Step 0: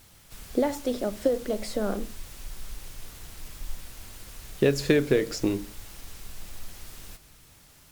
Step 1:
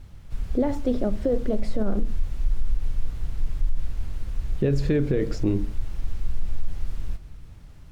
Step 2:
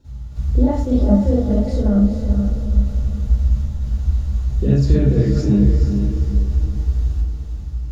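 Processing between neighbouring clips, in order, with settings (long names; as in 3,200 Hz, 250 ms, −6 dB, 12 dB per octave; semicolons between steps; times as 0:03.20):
RIAA equalisation playback; brickwall limiter −13.5 dBFS, peak gain reduction 10.5 dB
feedback delay with all-pass diffusion 451 ms, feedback 41%, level −6.5 dB; convolution reverb RT60 0.40 s, pre-delay 41 ms, DRR −10 dB; level −9.5 dB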